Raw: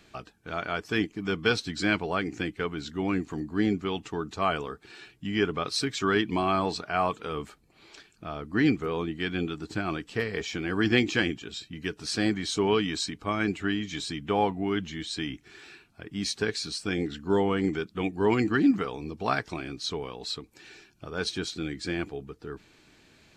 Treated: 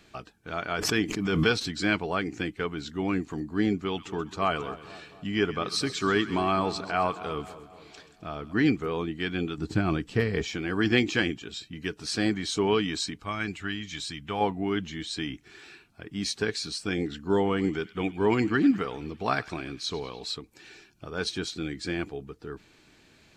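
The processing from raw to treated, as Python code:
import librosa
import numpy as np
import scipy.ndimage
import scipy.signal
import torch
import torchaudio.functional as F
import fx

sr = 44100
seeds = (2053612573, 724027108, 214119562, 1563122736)

y = fx.pre_swell(x, sr, db_per_s=34.0, at=(0.71, 1.78))
y = fx.echo_split(y, sr, split_hz=1000.0, low_ms=239, high_ms=131, feedback_pct=52, wet_db=-14.5, at=(3.81, 8.53))
y = fx.low_shelf(y, sr, hz=300.0, db=10.0, at=(9.58, 10.52))
y = fx.peak_eq(y, sr, hz=370.0, db=-8.5, octaves=2.3, at=(13.2, 14.41))
y = fx.echo_banded(y, sr, ms=100, feedback_pct=76, hz=3000.0, wet_db=-16, at=(17.34, 20.31))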